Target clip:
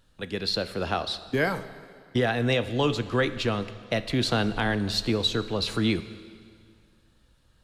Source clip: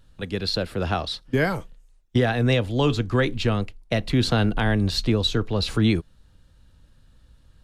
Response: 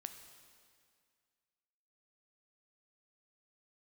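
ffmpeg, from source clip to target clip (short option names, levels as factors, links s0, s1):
-filter_complex "[0:a]lowshelf=f=170:g=-9.5,asplit=2[s0][s1];[1:a]atrim=start_sample=2205[s2];[s1][s2]afir=irnorm=-1:irlink=0,volume=2[s3];[s0][s3]amix=inputs=2:normalize=0,volume=0.398"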